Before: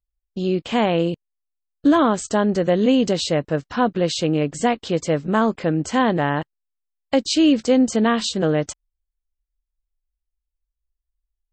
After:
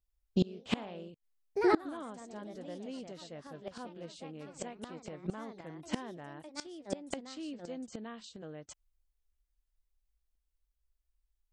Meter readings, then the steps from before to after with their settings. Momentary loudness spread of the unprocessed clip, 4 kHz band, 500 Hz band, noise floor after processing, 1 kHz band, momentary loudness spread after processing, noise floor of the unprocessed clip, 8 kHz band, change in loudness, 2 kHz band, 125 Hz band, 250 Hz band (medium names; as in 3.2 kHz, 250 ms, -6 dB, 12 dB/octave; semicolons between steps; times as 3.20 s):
7 LU, -20.0 dB, -18.0 dB, -82 dBFS, -19.0 dB, 15 LU, -82 dBFS, -20.0 dB, -19.0 dB, -18.0 dB, -18.0 dB, -19.5 dB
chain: ever faster or slower copies 85 ms, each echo +2 st, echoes 3, each echo -6 dB; inverted gate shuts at -15 dBFS, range -27 dB